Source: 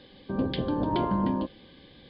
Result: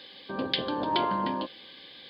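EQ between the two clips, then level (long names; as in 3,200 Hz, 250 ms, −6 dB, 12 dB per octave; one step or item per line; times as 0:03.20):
high-pass filter 780 Hz 6 dB per octave
high-shelf EQ 2,100 Hz +8 dB
+4.0 dB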